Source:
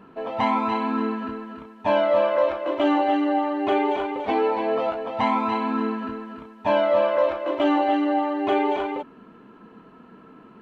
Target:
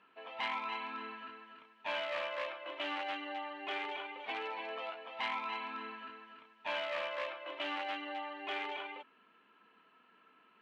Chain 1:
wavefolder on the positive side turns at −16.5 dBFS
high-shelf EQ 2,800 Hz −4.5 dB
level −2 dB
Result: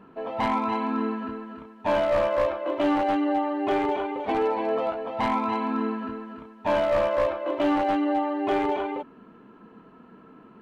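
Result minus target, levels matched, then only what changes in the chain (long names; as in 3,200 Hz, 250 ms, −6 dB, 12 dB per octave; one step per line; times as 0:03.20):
2,000 Hz band −9.5 dB
add after wavefolder on the positive side: resonant band-pass 2,800 Hz, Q 1.7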